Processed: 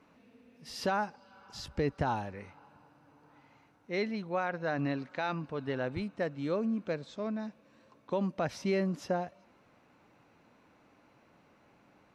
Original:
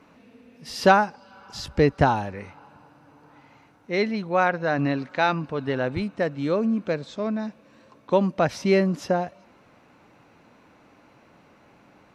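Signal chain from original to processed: peak limiter -12.5 dBFS, peak gain reduction 10 dB; trim -8.5 dB

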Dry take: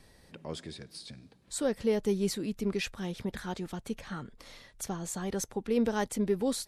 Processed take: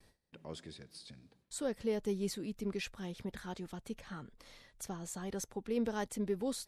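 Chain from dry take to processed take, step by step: gate with hold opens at -48 dBFS; trim -6.5 dB

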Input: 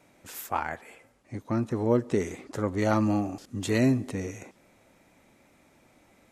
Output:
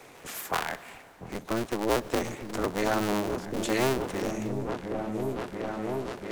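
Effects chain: cycle switcher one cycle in 2, inverted; bass shelf 140 Hz -10 dB; on a send: delay with an opening low-pass 694 ms, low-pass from 200 Hz, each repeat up 1 oct, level -3 dB; on the sum: plate-style reverb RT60 1.9 s, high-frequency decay 0.95×, DRR 18 dB; three bands compressed up and down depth 40%

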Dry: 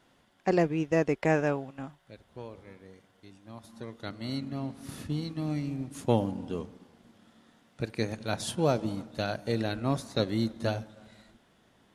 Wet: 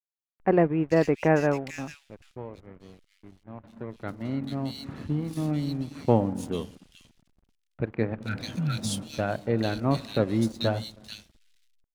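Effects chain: spectral replace 8.28–8.99 s, 220–1300 Hz after; hysteresis with a dead band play -45.5 dBFS; bands offset in time lows, highs 440 ms, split 2.5 kHz; trim +4 dB

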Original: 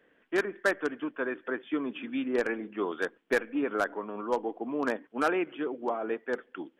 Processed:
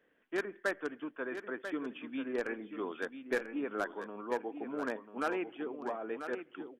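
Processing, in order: delay 991 ms -9 dB; trim -7 dB

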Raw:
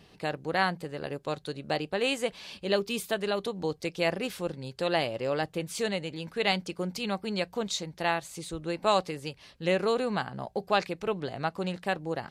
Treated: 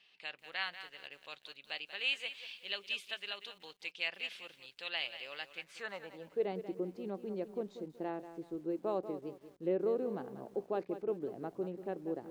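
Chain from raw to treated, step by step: band-pass sweep 2.8 kHz -> 350 Hz, 5.54–6.48 s; bit-crushed delay 188 ms, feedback 35%, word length 10-bit, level -11.5 dB; trim -1 dB

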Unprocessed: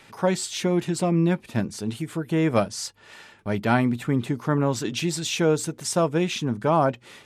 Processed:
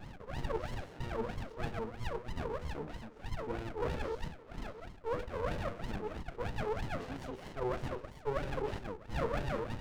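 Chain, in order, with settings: gliding tape speed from 63% -> 85%; in parallel at -0.5 dB: peak limiter -17 dBFS, peak gain reduction 9.5 dB; on the sum: peaking EQ 900 Hz +9.5 dB 0.3 oct; repeats whose band climbs or falls 126 ms, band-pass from 570 Hz, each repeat 0.7 oct, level -4.5 dB; wah-wah 3.1 Hz 430–1100 Hz, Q 22; bass shelf 300 Hz -11 dB; de-hum 98.42 Hz, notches 9; reverse; compression 4:1, threshold -50 dBFS, peak gain reduction 20.5 dB; reverse; sliding maximum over 33 samples; trim +18 dB

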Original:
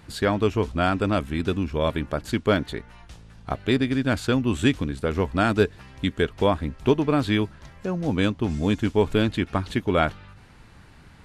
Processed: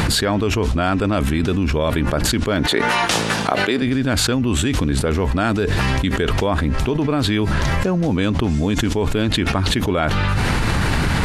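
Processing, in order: 2.66–3.82 s: high-pass 300 Hz 12 dB/octave; level flattener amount 100%; trim -3.5 dB

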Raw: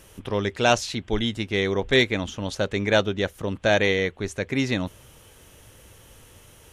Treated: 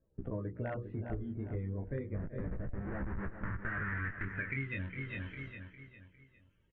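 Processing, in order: coarse spectral quantiser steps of 30 dB; peaking EQ 1.9 kHz -14.5 dB 0.77 oct; hum notches 60/120/180/240/300/360/420/480/540 Hz; 2.14–4.23 s: Schmitt trigger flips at -29 dBFS; chorus 0.33 Hz, delay 15 ms, depth 7.1 ms; frequency-shifting echo 377 ms, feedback 32%, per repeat +88 Hz, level -20 dB; gate with hold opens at -42 dBFS; low-pass sweep 620 Hz -> 7 kHz, 2.61–6.06 s; hard clipper -12.5 dBFS, distortion -36 dB; FFT filter 110 Hz 0 dB, 790 Hz -19 dB, 1.8 kHz +9 dB, 4.8 kHz -27 dB; feedback delay 405 ms, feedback 36%, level -13 dB; compression 6:1, threshold -43 dBFS, peak gain reduction 16.5 dB; trim +7.5 dB

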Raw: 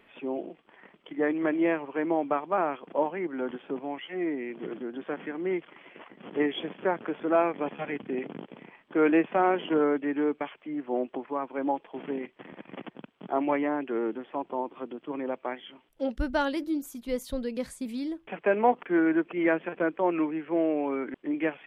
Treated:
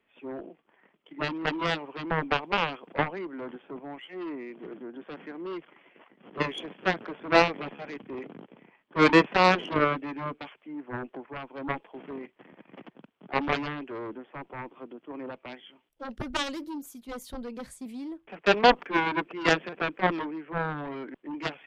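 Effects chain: Chebyshev shaper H 7 -11 dB, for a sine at -10 dBFS; three bands expanded up and down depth 40%

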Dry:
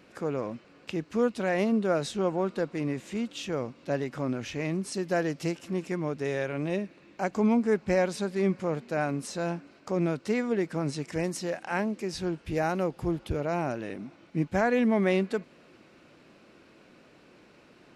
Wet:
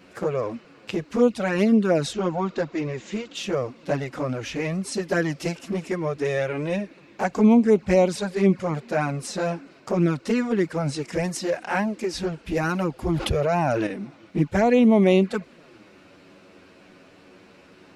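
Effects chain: 2.13–3.35 s: elliptic low-pass 7.3 kHz; touch-sensitive flanger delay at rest 11.8 ms, full sweep at -20.5 dBFS; 13.09–13.87 s: level flattener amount 70%; trim +8.5 dB

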